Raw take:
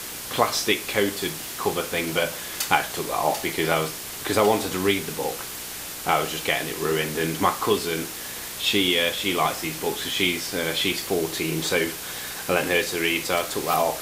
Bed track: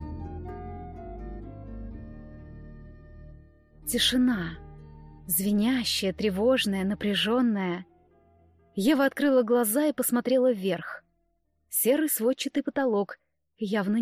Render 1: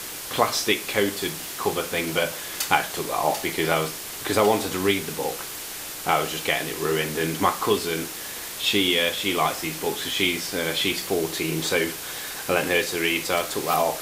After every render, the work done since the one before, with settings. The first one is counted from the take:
hum removal 60 Hz, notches 4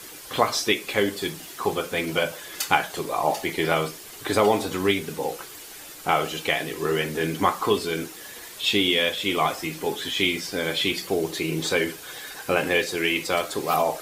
broadband denoise 9 dB, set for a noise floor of −35 dBFS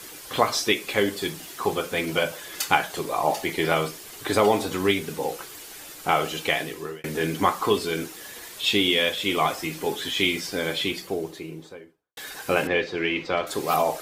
0:06.59–0:07.04: fade out
0:10.46–0:12.17: fade out and dull
0:12.67–0:13.47: high-frequency loss of the air 220 metres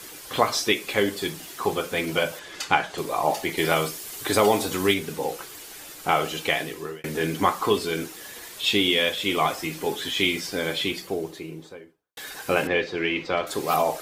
0:02.39–0:02.98: high-frequency loss of the air 65 metres
0:03.57–0:04.94: high-shelf EQ 4,900 Hz +7 dB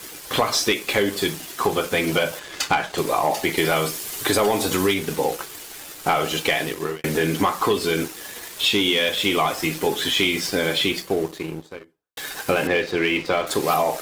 leveller curve on the samples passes 2
downward compressor 4 to 1, threshold −17 dBFS, peak gain reduction 7 dB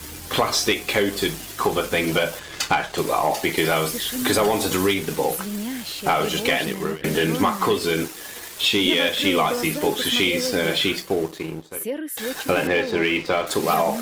mix in bed track −5 dB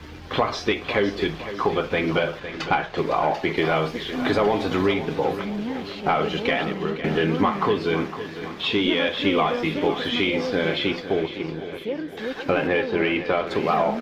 high-frequency loss of the air 260 metres
repeating echo 508 ms, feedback 54%, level −12 dB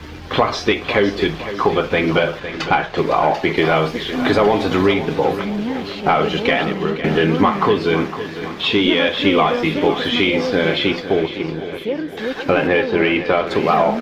level +6 dB
brickwall limiter −2 dBFS, peak gain reduction 1 dB

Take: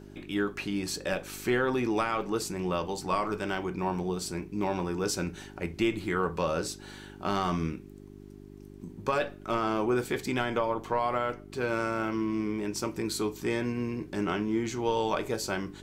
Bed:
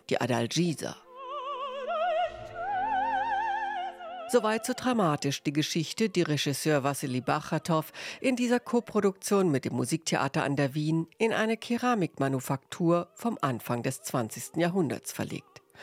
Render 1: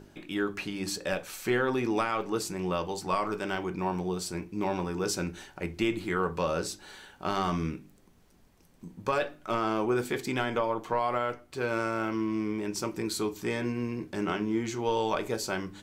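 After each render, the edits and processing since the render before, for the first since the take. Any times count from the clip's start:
hum removal 50 Hz, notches 8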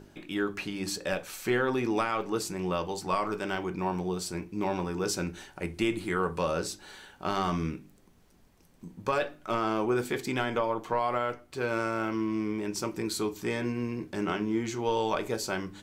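0:05.52–0:06.52: parametric band 9,200 Hz +8.5 dB 0.32 octaves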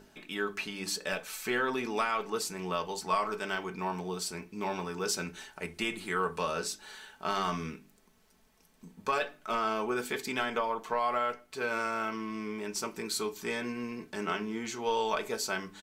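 low-shelf EQ 470 Hz −9.5 dB
comb filter 4.6 ms, depth 50%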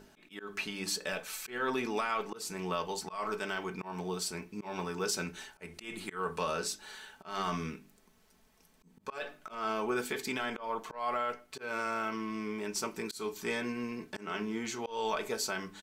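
brickwall limiter −21.5 dBFS, peak gain reduction 6 dB
volume swells 187 ms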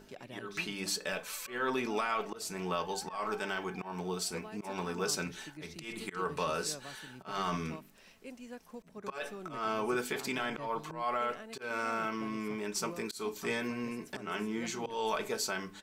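mix in bed −21 dB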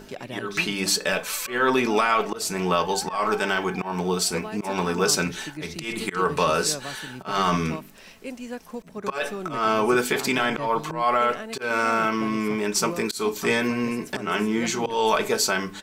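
level +12 dB

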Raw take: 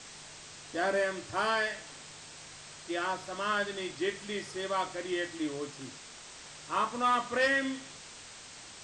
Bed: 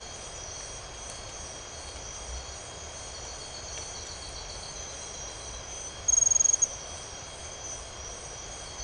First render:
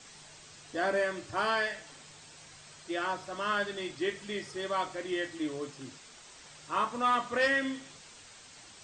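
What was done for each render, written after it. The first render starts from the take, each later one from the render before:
broadband denoise 6 dB, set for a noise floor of −49 dBFS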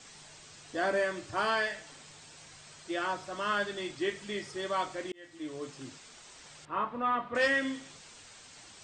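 0:05.12–0:05.75: fade in
0:06.65–0:07.35: high-frequency loss of the air 470 metres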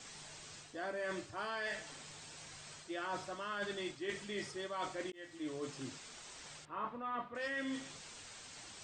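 reversed playback
downward compressor 12 to 1, threshold −37 dBFS, peak gain reduction 14.5 dB
reversed playback
every ending faded ahead of time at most 580 dB per second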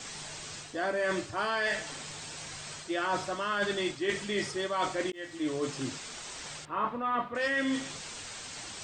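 level +10 dB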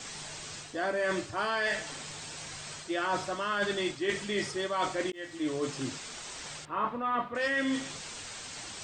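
no processing that can be heard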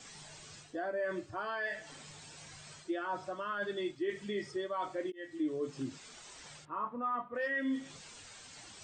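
downward compressor 2.5 to 1, threshold −36 dBFS, peak gain reduction 8 dB
every bin expanded away from the loudest bin 1.5 to 1

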